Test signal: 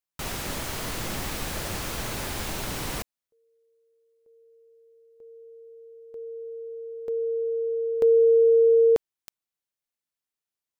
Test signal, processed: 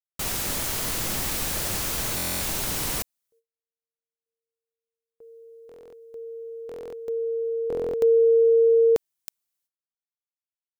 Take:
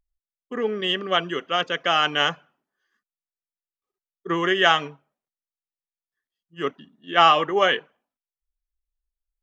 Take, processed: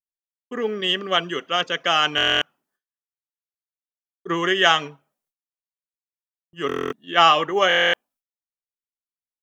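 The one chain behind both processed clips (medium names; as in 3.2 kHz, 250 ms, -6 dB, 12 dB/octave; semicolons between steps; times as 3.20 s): treble shelf 4.9 kHz +10 dB; gate with hold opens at -51 dBFS, closes at -53 dBFS, hold 322 ms, range -36 dB; buffer glitch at 2.16/5.67/6.67/7.68 s, samples 1024, times 10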